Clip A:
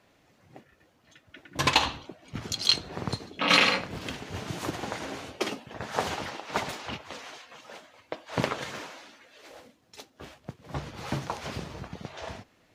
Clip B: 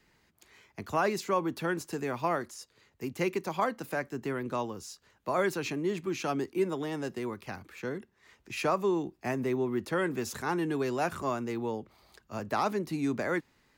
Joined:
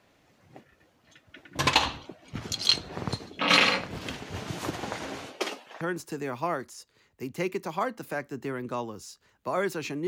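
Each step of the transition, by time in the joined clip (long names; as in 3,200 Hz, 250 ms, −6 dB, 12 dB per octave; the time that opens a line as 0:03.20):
clip A
0:05.26–0:05.81: high-pass filter 220 Hz → 760 Hz
0:05.81: continue with clip B from 0:01.62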